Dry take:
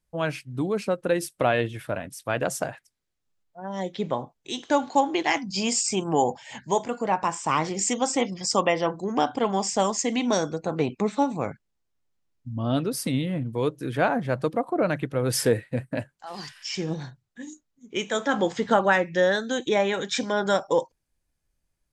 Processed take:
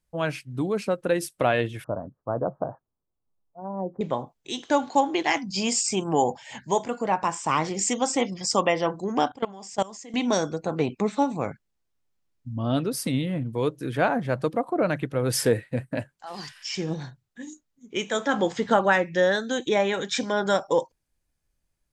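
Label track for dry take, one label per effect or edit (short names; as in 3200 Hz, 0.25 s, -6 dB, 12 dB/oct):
1.840000	4.010000	steep low-pass 1200 Hz 48 dB/oct
9.280000	10.140000	level quantiser steps of 21 dB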